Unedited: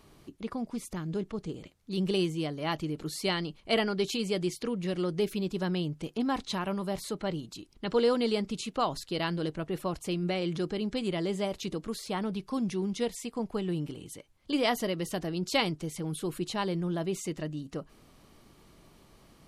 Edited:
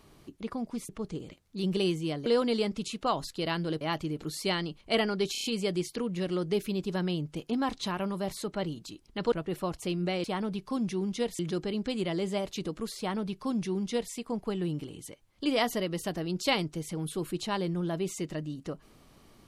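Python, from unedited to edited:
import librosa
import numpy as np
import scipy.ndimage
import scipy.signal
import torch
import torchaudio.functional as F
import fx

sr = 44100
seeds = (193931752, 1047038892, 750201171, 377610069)

y = fx.edit(x, sr, fx.cut(start_s=0.89, length_s=0.34),
    fx.stutter(start_s=4.11, slice_s=0.03, count=5),
    fx.move(start_s=7.99, length_s=1.55, to_s=2.6),
    fx.duplicate(start_s=12.05, length_s=1.15, to_s=10.46), tone=tone)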